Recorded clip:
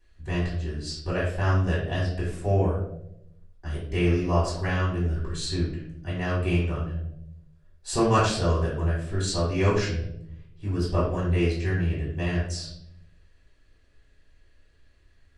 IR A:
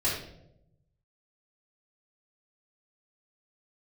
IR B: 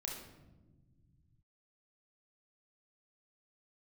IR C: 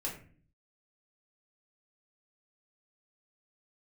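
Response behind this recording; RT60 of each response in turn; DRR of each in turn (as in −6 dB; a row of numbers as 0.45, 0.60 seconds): A; 0.85 s, non-exponential decay, 0.45 s; −9.5, −1.0, −4.0 decibels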